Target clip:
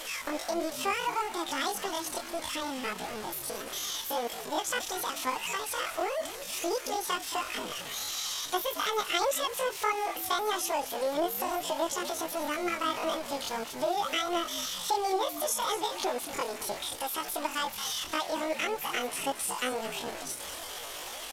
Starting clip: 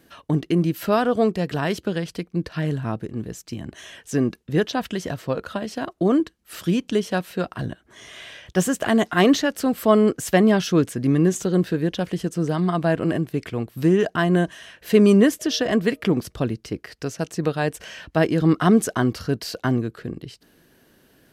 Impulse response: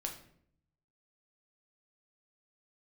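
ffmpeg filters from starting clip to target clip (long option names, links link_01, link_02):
-filter_complex "[0:a]aeval=exprs='val(0)+0.5*0.0473*sgn(val(0))':channel_layout=same,equalizer=frequency=91:width=0.39:gain=-14,acompressor=threshold=-24dB:ratio=3,aresample=16000,aeval=exprs='val(0)*gte(abs(val(0)),0.0133)':channel_layout=same,aresample=44100,flanger=delay=5.3:depth=10:regen=18:speed=1.6:shape=triangular,asetrate=85689,aresample=44100,atempo=0.514651,asplit=2[link_01][link_02];[link_02]asplit=3[link_03][link_04][link_05];[link_03]adelay=223,afreqshift=-81,volume=-12.5dB[link_06];[link_04]adelay=446,afreqshift=-162,volume=-22.7dB[link_07];[link_05]adelay=669,afreqshift=-243,volume=-32.8dB[link_08];[link_06][link_07][link_08]amix=inputs=3:normalize=0[link_09];[link_01][link_09]amix=inputs=2:normalize=0"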